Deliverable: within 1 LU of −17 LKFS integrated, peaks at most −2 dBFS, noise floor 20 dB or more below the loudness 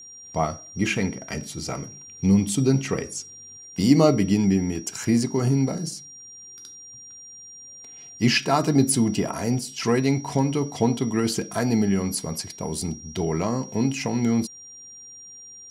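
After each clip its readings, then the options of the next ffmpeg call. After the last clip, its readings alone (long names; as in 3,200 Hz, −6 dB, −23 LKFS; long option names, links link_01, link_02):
interfering tone 5,700 Hz; level of the tone −41 dBFS; integrated loudness −23.5 LKFS; sample peak −4.5 dBFS; target loudness −17.0 LKFS
→ -af "bandreject=frequency=5700:width=30"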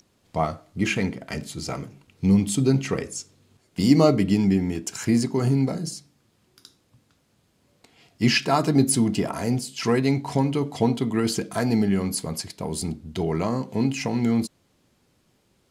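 interfering tone none found; integrated loudness −23.5 LKFS; sample peak −4.5 dBFS; target loudness −17.0 LKFS
→ -af "volume=6.5dB,alimiter=limit=-2dB:level=0:latency=1"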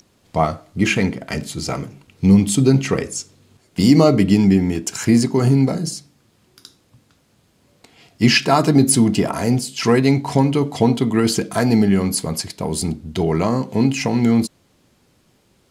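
integrated loudness −17.5 LKFS; sample peak −2.0 dBFS; background noise floor −60 dBFS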